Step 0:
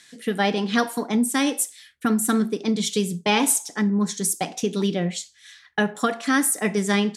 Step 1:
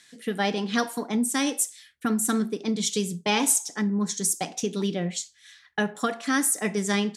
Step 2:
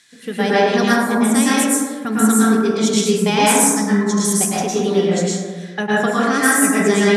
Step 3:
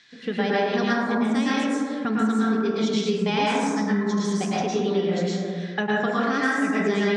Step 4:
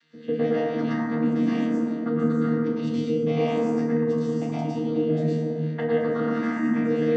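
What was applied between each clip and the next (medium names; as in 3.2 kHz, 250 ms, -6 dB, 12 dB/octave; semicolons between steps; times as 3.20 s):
dynamic bell 6.5 kHz, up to +6 dB, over -39 dBFS, Q 1.3; trim -4 dB
plate-style reverb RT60 1.6 s, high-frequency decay 0.3×, pre-delay 95 ms, DRR -8.5 dB; trim +2 dB
low-pass 5 kHz 24 dB/octave; compression 2.5:1, threshold -23 dBFS, peak gain reduction 9.5 dB
vocoder on a held chord bare fifth, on D#3; FDN reverb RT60 0.7 s, low-frequency decay 0.9×, high-frequency decay 0.75×, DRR 1 dB; trim -1.5 dB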